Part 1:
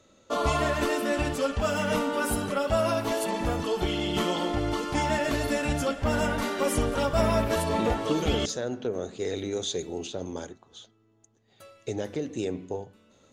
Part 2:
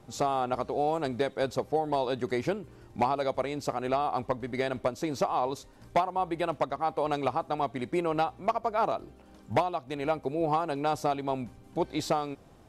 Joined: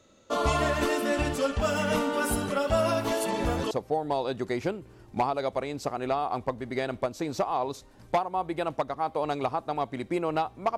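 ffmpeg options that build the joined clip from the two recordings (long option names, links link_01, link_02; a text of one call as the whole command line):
ffmpeg -i cue0.wav -i cue1.wav -filter_complex "[1:a]asplit=2[link_01][link_02];[0:a]apad=whole_dur=10.77,atrim=end=10.77,atrim=end=3.712[link_03];[link_02]atrim=start=1.528:end=8.59[link_04];[link_01]atrim=start=1.12:end=1.53,asetpts=PTS-STARTPTS,volume=-9dB,afade=type=in:duration=0.004:curve=hsin,afade=type=out:start_time=0.406:duration=0.004:curve=hsin,adelay=3300[link_05];[link_03][link_04]acrossfade=duration=0.004:curve1=hsin:curve2=hsin[link_06];[link_06][link_05]amix=inputs=2:normalize=0" out.wav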